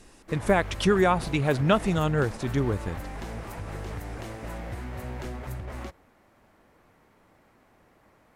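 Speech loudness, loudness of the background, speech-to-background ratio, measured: -25.0 LUFS, -38.0 LUFS, 13.0 dB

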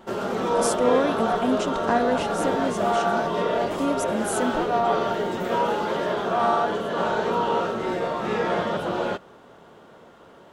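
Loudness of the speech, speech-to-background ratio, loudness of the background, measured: -27.5 LUFS, -3.0 dB, -24.5 LUFS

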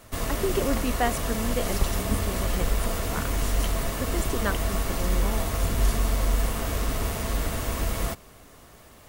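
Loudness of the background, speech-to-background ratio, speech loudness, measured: -28.0 LUFS, -5.0 dB, -33.0 LUFS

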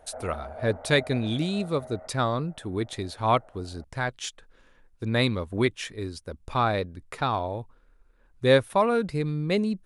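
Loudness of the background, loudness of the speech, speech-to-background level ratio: -42.5 LUFS, -27.5 LUFS, 15.0 dB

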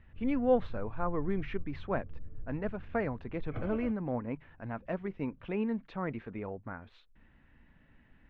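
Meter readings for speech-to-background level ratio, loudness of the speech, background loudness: 13.5 dB, -35.5 LUFS, -49.0 LUFS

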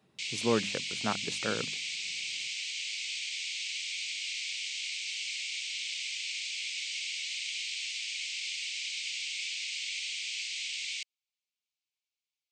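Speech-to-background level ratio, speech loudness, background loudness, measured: -0.5 dB, -34.5 LUFS, -34.0 LUFS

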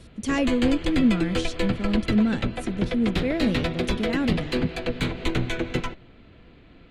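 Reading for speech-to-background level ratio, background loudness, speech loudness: 2.5 dB, -28.5 LUFS, -26.0 LUFS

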